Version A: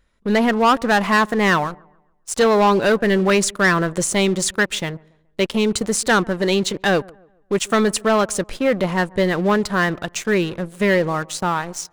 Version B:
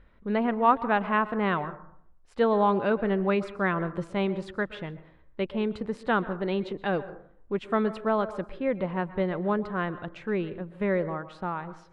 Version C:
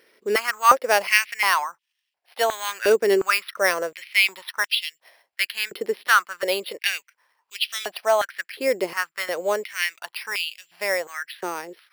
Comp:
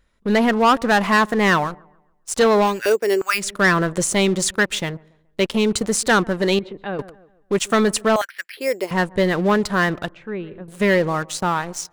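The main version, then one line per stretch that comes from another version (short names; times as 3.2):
A
2.71–3.45 from C, crossfade 0.24 s
6.59–6.99 from B
8.16–8.91 from C
10.1–10.68 from B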